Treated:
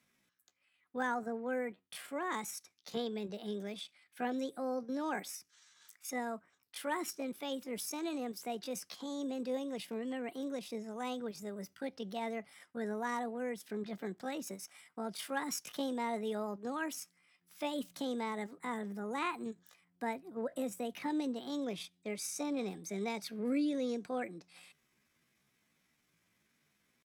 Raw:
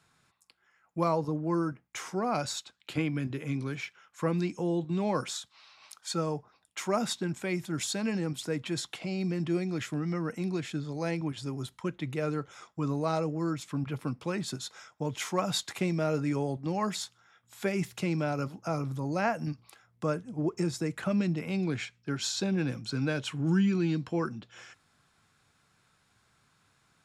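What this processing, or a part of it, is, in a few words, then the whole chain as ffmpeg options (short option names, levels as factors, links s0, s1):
chipmunk voice: -af "asetrate=66075,aresample=44100,atempo=0.66742,volume=0.422"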